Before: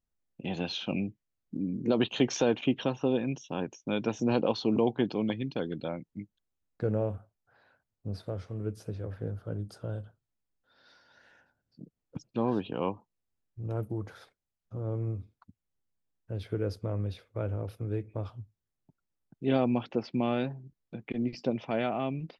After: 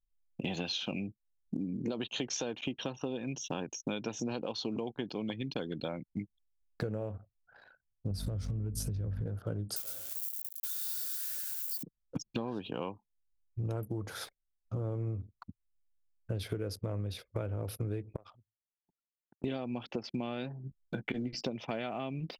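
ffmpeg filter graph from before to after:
-filter_complex "[0:a]asettb=1/sr,asplit=3[s0][s1][s2];[s0]atrim=end=8.114[s3];[s1]atrim=start=8.11:end=9.26,asetpts=PTS-STARTPTS,afade=t=in:d=0.004:c=qsin,afade=t=out:st=1.146:d=0.004:c=qsin,bass=f=250:g=13,treble=f=4000:g=8,aeval=exprs='val(0)+0.0158*(sin(2*PI*50*n/s)+sin(2*PI*2*50*n/s)/2+sin(2*PI*3*50*n/s)/3+sin(2*PI*4*50*n/s)/4+sin(2*PI*5*50*n/s)/5)':c=same,acompressor=threshold=0.0251:ratio=3:attack=3.2:release=140:knee=1:detection=peak[s4];[s2]atrim=start=9.256[s5];[s3][s4]acrossfade=d=0.004:c1=hsin:c2=qsin[s6];[s6][s5]acrossfade=d=0.004:c1=qsin:c2=hsin,asettb=1/sr,asplit=3[s7][s8][s9];[s7]atrim=end=9.764[s10];[s8]atrim=start=9.76:end=11.83,asetpts=PTS-STARTPTS,afade=t=in:d=0.004:c=qsin,afade=t=out:st=2.066:d=0.004:c=qsin,aeval=exprs='val(0)+0.5*0.00708*sgn(val(0))':c=same,aderivative,aecho=1:1:112:0.596,atrim=end_sample=91287[s11];[s9]atrim=start=11.826[s12];[s10][s11]acrossfade=d=0.004:c1=hsin:c2=qsin[s13];[s13][s12]acrossfade=d=0.004:c1=qsin:c2=hsin,asettb=1/sr,asplit=3[s14][s15][s16];[s14]atrim=end=18.164[s17];[s15]atrim=start=18.16:end=19.44,asetpts=PTS-STARTPTS,afade=t=in:d=0.004:c=qsin,afade=t=out:st=1.276:d=0.004:c=qsin,acompressor=threshold=0.00355:ratio=4:attack=3.2:release=140:knee=1:detection=peak,bandpass=f=1900:t=q:w=0.51[s18];[s16]atrim=start=19.436[s19];[s17][s18]acrossfade=d=0.004:c1=hsin:c2=qsin[s20];[s20][s19]acrossfade=d=0.004:c1=qsin:c2=hsin,asettb=1/sr,asplit=3[s21][s22][s23];[s21]atrim=end=20.634[s24];[s22]atrim=start=20.63:end=21.41,asetpts=PTS-STARTPTS,afade=t=in:d=0.004:c=qsin,afade=t=out:st=0.776:d=0.004:c=qsin,equalizer=f=1500:w=6.4:g=10,bandreject=f=2500:w=8.9,asplit=2[s25][s26];[s26]adelay=15,volume=0.282[s27];[s25][s27]amix=inputs=2:normalize=0,atrim=end_sample=34398[s28];[s23]atrim=start=21.406[s29];[s24][s28]acrossfade=d=0.004:c1=hsin:c2=qsin[s30];[s30][s29]acrossfade=d=0.004:c1=qsin:c2=hsin,aemphasis=mode=production:type=75kf,acompressor=threshold=0.01:ratio=20,anlmdn=0.0000398,volume=2.51"

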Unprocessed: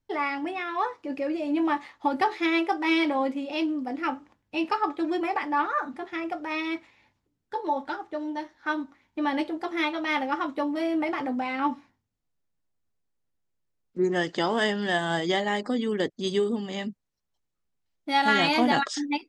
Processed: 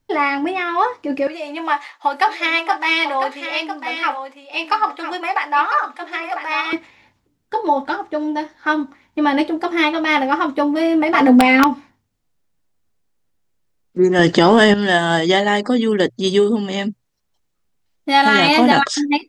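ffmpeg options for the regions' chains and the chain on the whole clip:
-filter_complex "[0:a]asettb=1/sr,asplit=3[s0][s1][s2];[s0]atrim=end=1.274[s3];[s1]atrim=start=1.27:end=6.73,asetpts=PTS-STARTPTS,afade=t=in:d=0.004:c=qsin,afade=t=out:st=5.456:d=0.004:c=qsin,highpass=760,aecho=1:1:1000:0.355,atrim=end_sample=240786[s4];[s2]atrim=start=6.726[s5];[s3][s4]acrossfade=d=0.004:c1=hsin:c2=qsin[s6];[s6][s5]acrossfade=d=0.004:c1=qsin:c2=hsin,asettb=1/sr,asplit=3[s7][s8][s9];[s7]atrim=end=11.144[s10];[s8]atrim=start=11.14:end=11.64,asetpts=PTS-STARTPTS,afade=t=in:d=0.004:c=qsin,afade=t=out:st=0.496:d=0.004:c=qsin,aeval=exprs='(mod(9.44*val(0)+1,2)-1)/9.44':c=same,aecho=1:1:4.3:0.75,atrim=end_sample=22050,acontrast=38[s11];[s9]atrim=start=11.636[s12];[s10][s11]acrossfade=d=0.004:c1=hsin:c2=qsin[s13];[s13][s12]acrossfade=d=0.004:c1=qsin:c2=hsin,asettb=1/sr,asplit=3[s14][s15][s16];[s14]atrim=end=14.194[s17];[s15]atrim=start=14.19:end=14.74,asetpts=PTS-STARTPTS,afade=t=in:d=0.004:c=qsin,afade=t=out:st=0.546:d=0.004:c=qsin,lowshelf=f=350:g=7,acontrast=83[s18];[s16]atrim=start=14.736[s19];[s17][s18]acrossfade=d=0.004:c1=hsin:c2=qsin[s20];[s20][s19]acrossfade=d=0.004:c1=qsin:c2=hsin,bandreject=f=60:t=h:w=6,bandreject=f=120:t=h:w=6,alimiter=level_in=3.76:limit=0.891:release=50:level=0:latency=1,volume=0.891"

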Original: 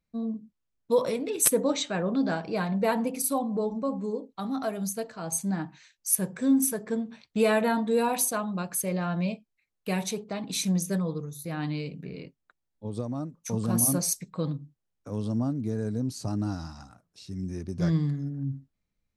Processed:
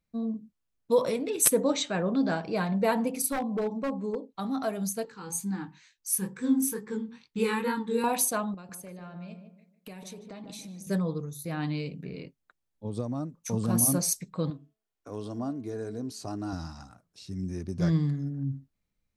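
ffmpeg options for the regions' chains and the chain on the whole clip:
-filter_complex "[0:a]asettb=1/sr,asplit=3[s0][s1][s2];[s0]atrim=end=3.264[s3];[s1]atrim=start=3.26:end=4.34,asetpts=PTS-STARTPTS,afade=t=in:d=0.004:c=qsin,afade=t=out:st=1.076:d=0.004:c=qsin,highpass=f=120:p=1,highshelf=f=5600:g=-7.5,aeval=exprs='0.0668*(abs(mod(val(0)/0.0668+3,4)-2)-1)':c=same[s4];[s2]atrim=start=4.336[s5];[s3][s4]acrossfade=d=0.004:c1=hsin:c2=qsin[s6];[s6][s5]acrossfade=d=0.004:c1=qsin:c2=hsin,asettb=1/sr,asplit=3[s7][s8][s9];[s7]atrim=end=5.054[s10];[s8]atrim=start=5.05:end=8.04,asetpts=PTS-STARTPTS,afade=t=in:d=0.004:c=qsin,afade=t=out:st=2.986:d=0.004:c=qsin,flanger=delay=19:depth=7.8:speed=2.2,asuperstop=centerf=640:order=8:qfactor=2.6[s11];[s9]atrim=start=8.036[s12];[s10][s11]acrossfade=d=0.004:c1=hsin:c2=qsin[s13];[s13][s12]acrossfade=d=0.004:c1=qsin:c2=hsin,asettb=1/sr,asplit=3[s14][s15][s16];[s14]atrim=end=8.544[s17];[s15]atrim=start=8.54:end=10.87,asetpts=PTS-STARTPTS,afade=t=in:d=0.004:c=qsin,afade=t=out:st=2.326:d=0.004:c=qsin,highpass=49,acompressor=threshold=0.01:ratio=12:attack=3.2:release=140:knee=1:detection=peak,asplit=2[s18][s19];[s19]adelay=150,lowpass=f=1100:p=1,volume=0.501,asplit=2[s20][s21];[s21]adelay=150,lowpass=f=1100:p=1,volume=0.36,asplit=2[s22][s23];[s23]adelay=150,lowpass=f=1100:p=1,volume=0.36,asplit=2[s24][s25];[s25]adelay=150,lowpass=f=1100:p=1,volume=0.36[s26];[s18][s20][s22][s24][s26]amix=inputs=5:normalize=0,atrim=end_sample=102753[s27];[s16]atrim=start=10.866[s28];[s17][s27]acrossfade=d=0.004:c1=hsin:c2=qsin[s29];[s29][s28]acrossfade=d=0.004:c1=qsin:c2=hsin,asettb=1/sr,asplit=3[s30][s31][s32];[s30]atrim=end=14.504[s33];[s31]atrim=start=14.5:end=16.53,asetpts=PTS-STARTPTS,afade=t=in:d=0.004:c=qsin,afade=t=out:st=2.026:d=0.004:c=qsin,bass=f=250:g=-10,treble=f=4000:g=-3,aecho=1:1:2.8:0.34,atrim=end_sample=89523,bandreject=f=217.8:t=h:w=4,bandreject=f=435.6:t=h:w=4,bandreject=f=653.4:t=h:w=4,bandreject=f=871.2:t=h:w=4,bandreject=f=1089:t=h:w=4,bandreject=f=1306.8:t=h:w=4,bandreject=f=1524.6:t=h:w=4,bandreject=f=1742.4:t=h:w=4,bandreject=f=1960.2:t=h:w=4,bandreject=f=2178:t=h:w=4,bandreject=f=2395.8:t=h:w=4,bandreject=f=2613.6:t=h:w=4,bandreject=f=2831.4:t=h:w=4,bandreject=f=3049.2:t=h:w=4,bandreject=f=3267:t=h:w=4,bandreject=f=3484.8:t=h:w=4[s34];[s32]atrim=start=16.526[s35];[s33][s34]acrossfade=d=0.004:c1=hsin:c2=qsin[s36];[s36][s35]acrossfade=d=0.004:c1=qsin:c2=hsin"

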